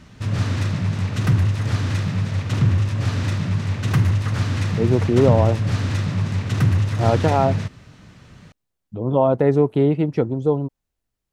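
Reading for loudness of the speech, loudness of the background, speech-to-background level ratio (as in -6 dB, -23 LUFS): -20.0 LUFS, -21.5 LUFS, 1.5 dB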